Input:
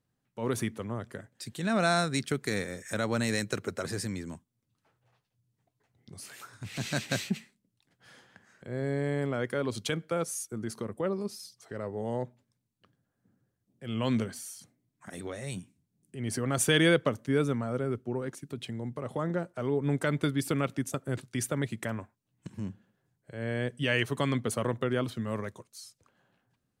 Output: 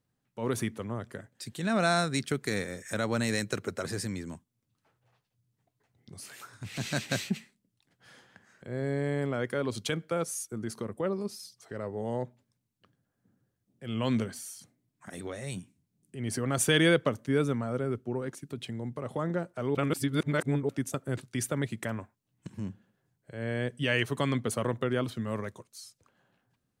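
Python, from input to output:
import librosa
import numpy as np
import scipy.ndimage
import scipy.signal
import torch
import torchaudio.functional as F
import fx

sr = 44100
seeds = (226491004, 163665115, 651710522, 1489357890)

y = fx.edit(x, sr, fx.reverse_span(start_s=19.75, length_s=0.94), tone=tone)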